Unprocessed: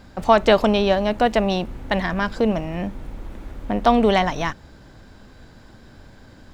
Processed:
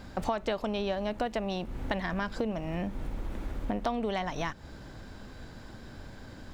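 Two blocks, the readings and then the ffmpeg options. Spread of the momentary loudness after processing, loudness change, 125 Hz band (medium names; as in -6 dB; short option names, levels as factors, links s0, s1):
16 LU, -13.5 dB, -9.0 dB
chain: -af "acompressor=threshold=0.0355:ratio=6"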